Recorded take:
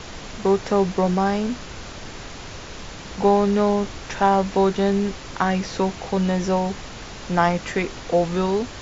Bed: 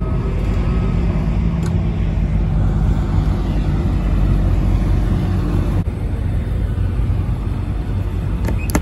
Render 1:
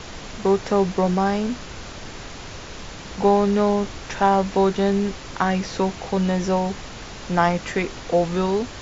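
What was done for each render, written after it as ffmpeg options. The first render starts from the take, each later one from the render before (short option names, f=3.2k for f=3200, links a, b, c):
-af anull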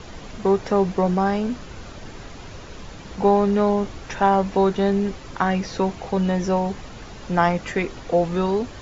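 -af "afftdn=nr=7:nf=-37"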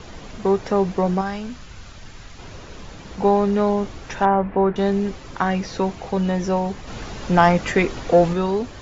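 -filter_complex "[0:a]asettb=1/sr,asplit=3[a][b][c];[a]atrim=end=1.214[d];[b]atrim=start=1.21:end=2.39,asetpts=PTS-STARTPTS,afade=t=in:d=0.004:c=qsin,afade=t=out:st=1.176:d=0.004:c=qsin,equalizer=f=400:w=0.51:g=-9.5[e];[c]atrim=start=2.386[f];[d][e]acrossfade=d=0.004:c1=hsin:c2=qsin[g];[g][f]acrossfade=d=0.004:c1=qsin:c2=hsin,asettb=1/sr,asplit=3[h][i][j];[h]atrim=end=4.254[k];[i]atrim=start=4.25:end=4.76,asetpts=PTS-STARTPTS,afade=t=in:d=0.004:c=qsin,afade=t=out:st=0.506:d=0.004:c=qsin,lowpass=f=2.2k:w=0.5412,lowpass=f=2.2k:w=1.3066[l];[j]atrim=start=4.756[m];[k][l]acrossfade=d=0.004:c1=hsin:c2=qsin[n];[n][m]acrossfade=d=0.004:c1=qsin:c2=hsin,asplit=3[o][p][q];[o]afade=t=out:st=6.87:d=0.02[r];[p]acontrast=44,afade=t=in:st=6.87:d=0.02,afade=t=out:st=8.32:d=0.02[s];[q]afade=t=in:st=8.32:d=0.02[t];[r][s][t]amix=inputs=3:normalize=0"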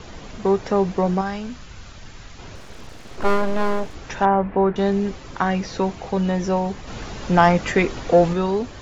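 -filter_complex "[0:a]asettb=1/sr,asplit=3[a][b][c];[a]atrim=end=2.554[d];[b]atrim=start=2.55:end=3.95,asetpts=PTS-STARTPTS,afade=t=in:d=0.004:c=qsin,afade=t=out:st=1.396:d=0.004:c=qsin,aeval=exprs='abs(val(0))':c=same[e];[c]atrim=start=3.946[f];[d][e]acrossfade=d=0.004:c1=hsin:c2=qsin[g];[g][f]acrossfade=d=0.004:c1=qsin:c2=hsin"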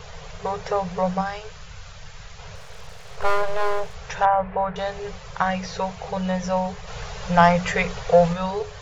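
-af "afftfilt=real='re*(1-between(b*sr/4096,190,400))':imag='im*(1-between(b*sr/4096,190,400))':win_size=4096:overlap=0.75,bandreject=f=60:t=h:w=6,bandreject=f=120:t=h:w=6,bandreject=f=180:t=h:w=6,bandreject=f=240:t=h:w=6,bandreject=f=300:t=h:w=6,bandreject=f=360:t=h:w=6,bandreject=f=420:t=h:w=6"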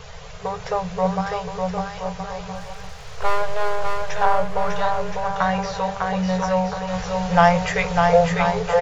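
-filter_complex "[0:a]asplit=2[a][b];[b]adelay=16,volume=-11dB[c];[a][c]amix=inputs=2:normalize=0,aecho=1:1:600|1020|1314|1520|1664:0.631|0.398|0.251|0.158|0.1"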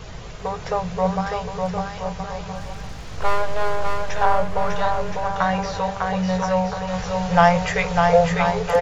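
-filter_complex "[1:a]volume=-21.5dB[a];[0:a][a]amix=inputs=2:normalize=0"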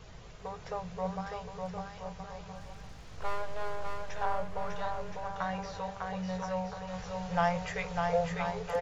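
-af "volume=-14dB"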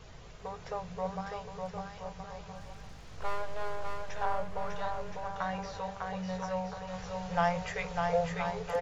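-af "bandreject=f=60:t=h:w=6,bandreject=f=120:t=h:w=6,bandreject=f=180:t=h:w=6"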